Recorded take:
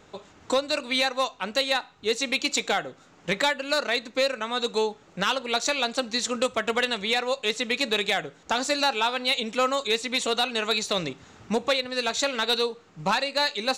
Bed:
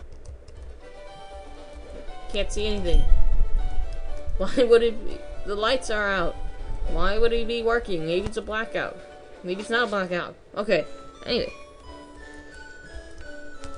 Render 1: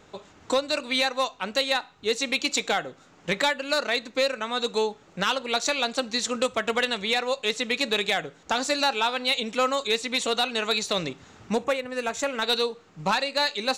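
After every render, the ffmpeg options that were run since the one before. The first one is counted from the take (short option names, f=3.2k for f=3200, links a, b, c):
-filter_complex "[0:a]asettb=1/sr,asplit=3[a][b][c];[a]atrim=end=11.644[d];[b]atrim=start=11.64:end=12.42,asetpts=PTS-STARTPTS,afade=t=in:d=0.004:c=qsin,afade=t=out:st=0.776:d=0.004:c=qsin,equalizer=f=4.1k:w=1.8:g=-14.5[e];[c]atrim=start=12.416[f];[d][e]acrossfade=d=0.004:c1=hsin:c2=qsin[g];[g][f]acrossfade=d=0.004:c1=qsin:c2=hsin"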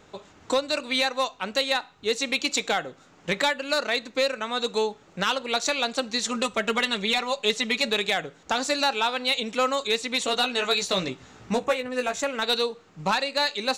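-filter_complex "[0:a]asettb=1/sr,asplit=3[a][b][c];[a]atrim=end=6.254[d];[b]atrim=start=6.25:end=7.9,asetpts=PTS-STARTPTS,afade=t=in:d=0.004:c=qsin,afade=t=out:st=1.646:d=0.004:c=qsin,aecho=1:1:5:0.65,atrim=end_sample=72765[e];[c]atrim=start=7.896[f];[d][e]acrossfade=d=0.004:c1=hsin:c2=qsin[g];[g][f]acrossfade=d=0.004:c1=qsin:c2=hsin,asettb=1/sr,asplit=3[h][i][j];[h]atrim=end=10.264[k];[i]atrim=start=10.26:end=12.19,asetpts=PTS-STARTPTS,afade=t=in:d=0.004:c=qsin,afade=t=out:st=1.926:d=0.004:c=qsin,asplit=2[l][m];[m]adelay=16,volume=-5dB[n];[l][n]amix=inputs=2:normalize=0,atrim=end_sample=85113[o];[j]atrim=start=12.186[p];[k][o]acrossfade=d=0.004:c1=hsin:c2=qsin[q];[q][p]acrossfade=d=0.004:c1=qsin:c2=hsin"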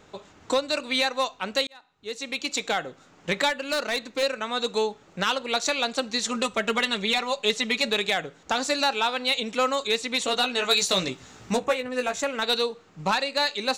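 -filter_complex "[0:a]asettb=1/sr,asplit=3[a][b][c];[a]atrim=end=3.494[d];[b]atrim=start=3.49:end=4.23,asetpts=PTS-STARTPTS,afade=t=in:d=0.004:c=qsin,afade=t=out:st=0.736:d=0.004:c=qsin,volume=21.5dB,asoftclip=hard,volume=-21.5dB[e];[c]atrim=start=4.226[f];[d][e]acrossfade=d=0.004:c1=hsin:c2=qsin[g];[g][f]acrossfade=d=0.004:c1=qsin:c2=hsin,asettb=1/sr,asplit=3[h][i][j];[h]atrim=end=10.694[k];[i]atrim=start=10.69:end=11.57,asetpts=PTS-STARTPTS,afade=t=in:d=0.004:c=qsin,afade=t=out:st=0.876:d=0.004:c=qsin,highshelf=f=4.8k:g=9[l];[j]atrim=start=11.566[m];[k][l]acrossfade=d=0.004:c1=hsin:c2=qsin[n];[n][m]acrossfade=d=0.004:c1=qsin:c2=hsin,asplit=2[o][p];[o]atrim=end=1.67,asetpts=PTS-STARTPTS,afade=t=out:st=1.666:d=0.004:c=hsin[q];[p]atrim=start=1.67,asetpts=PTS-STARTPTS,afade=t=in:d=1.2[r];[q][r]concat=n=2:v=0:a=1"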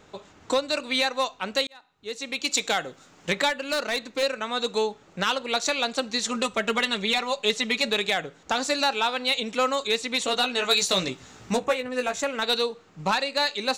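-filter_complex "[0:a]asettb=1/sr,asplit=3[a][b][c];[a]atrim=end=2.434[d];[b]atrim=start=2.43:end=3.32,asetpts=PTS-STARTPTS,afade=t=in:d=0.004:c=qsin,afade=t=out:st=0.886:d=0.004:c=qsin,highshelf=f=3.8k:g=7.5[e];[c]atrim=start=3.316[f];[d][e]acrossfade=d=0.004:c1=hsin:c2=qsin[g];[g][f]acrossfade=d=0.004:c1=qsin:c2=hsin"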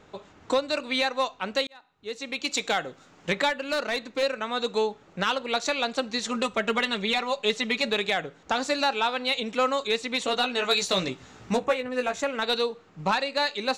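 -af "highshelf=f=5.5k:g=-9.5"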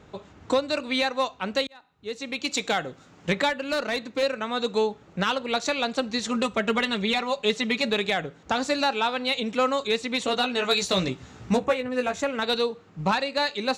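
-af "highpass=41,lowshelf=f=200:g=9.5"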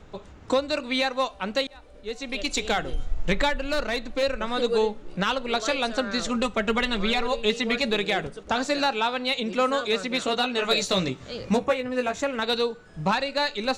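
-filter_complex "[1:a]volume=-11dB[a];[0:a][a]amix=inputs=2:normalize=0"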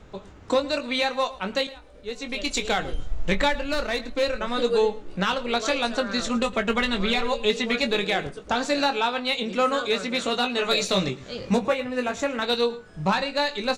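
-filter_complex "[0:a]asplit=2[a][b];[b]adelay=21,volume=-8dB[c];[a][c]amix=inputs=2:normalize=0,asplit=2[d][e];[e]adelay=110.8,volume=-18dB,highshelf=f=4k:g=-2.49[f];[d][f]amix=inputs=2:normalize=0"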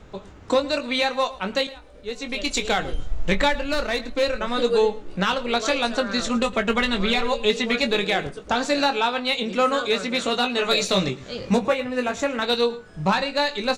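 -af "volume=2dB"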